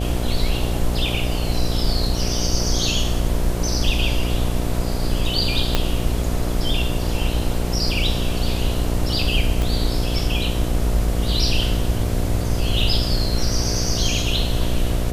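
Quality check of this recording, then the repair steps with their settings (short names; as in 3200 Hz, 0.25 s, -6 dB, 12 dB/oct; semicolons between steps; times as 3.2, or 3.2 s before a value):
buzz 60 Hz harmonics 12 -24 dBFS
5.75 pop -3 dBFS
9.62 pop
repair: de-click; de-hum 60 Hz, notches 12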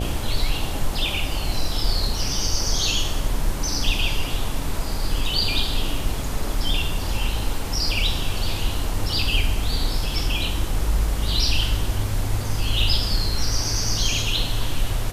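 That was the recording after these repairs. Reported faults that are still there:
5.75 pop
9.62 pop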